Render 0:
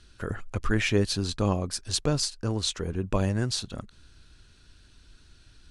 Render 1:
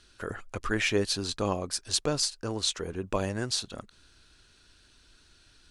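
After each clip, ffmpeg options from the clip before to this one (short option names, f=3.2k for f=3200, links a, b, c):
-af "bass=f=250:g=-9,treble=f=4k:g=1"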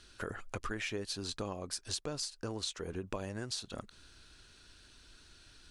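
-af "acompressor=threshold=-37dB:ratio=6,volume=1dB"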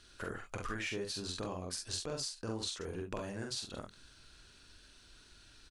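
-af "aecho=1:1:45|67:0.708|0.299,volume=-2.5dB"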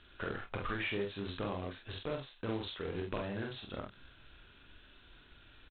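-filter_complex "[0:a]aresample=8000,acrusher=bits=3:mode=log:mix=0:aa=0.000001,aresample=44100,asplit=2[a][b];[b]adelay=30,volume=-11dB[c];[a][c]amix=inputs=2:normalize=0,volume=2dB"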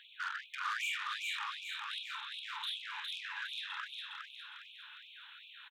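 -filter_complex "[0:a]acrossover=split=540[a][b];[b]asoftclip=type=tanh:threshold=-39.5dB[c];[a][c]amix=inputs=2:normalize=0,aecho=1:1:409|818|1227|1636|2045|2454:0.708|0.326|0.15|0.0689|0.0317|0.0146,afftfilt=real='re*gte(b*sr/1024,790*pow(2300/790,0.5+0.5*sin(2*PI*2.6*pts/sr)))':imag='im*gte(b*sr/1024,790*pow(2300/790,0.5+0.5*sin(2*PI*2.6*pts/sr)))':win_size=1024:overlap=0.75,volume=7.5dB"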